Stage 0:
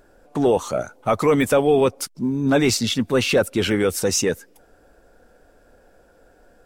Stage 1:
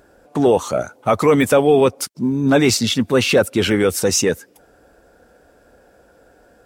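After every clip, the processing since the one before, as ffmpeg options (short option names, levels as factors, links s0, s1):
-af "highpass=52,volume=1.5"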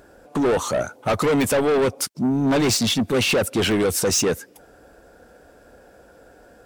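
-af "asoftclip=type=tanh:threshold=0.126,volume=1.26"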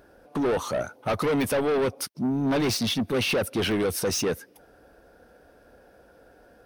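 -af "equalizer=f=7400:t=o:w=0.25:g=-13.5,volume=0.562"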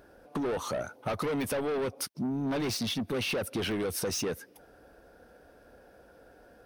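-af "acompressor=threshold=0.0398:ratio=6,volume=0.841"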